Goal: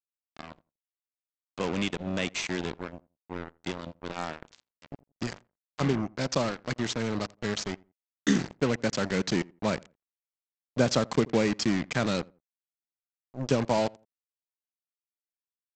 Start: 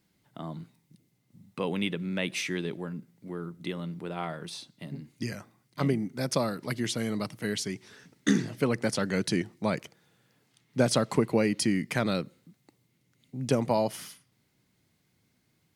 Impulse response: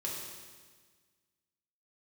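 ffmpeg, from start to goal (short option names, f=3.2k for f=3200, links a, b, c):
-filter_complex "[0:a]agate=range=-33dB:threshold=-54dB:ratio=3:detection=peak,aresample=16000,acrusher=bits=4:mix=0:aa=0.5,aresample=44100,asplit=2[a][b];[b]adelay=85,lowpass=f=1.2k:p=1,volume=-23.5dB,asplit=2[c][d];[d]adelay=85,lowpass=f=1.2k:p=1,volume=0.25[e];[a][c][e]amix=inputs=3:normalize=0"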